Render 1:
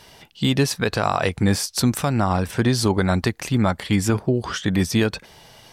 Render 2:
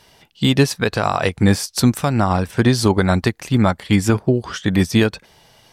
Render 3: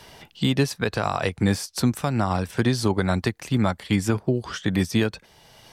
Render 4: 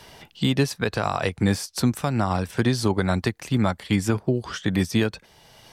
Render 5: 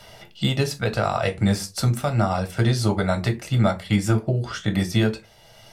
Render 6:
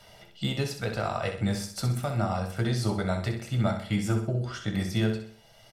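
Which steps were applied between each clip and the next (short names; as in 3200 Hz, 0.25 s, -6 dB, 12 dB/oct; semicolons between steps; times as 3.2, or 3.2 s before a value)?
upward expander 1.5:1, over -33 dBFS; gain +5.5 dB
three-band squash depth 40%; gain -6.5 dB
nothing audible
reverb RT60 0.25 s, pre-delay 3 ms, DRR 5 dB; gain -2 dB
feedback echo 64 ms, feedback 42%, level -8 dB; gain -7.5 dB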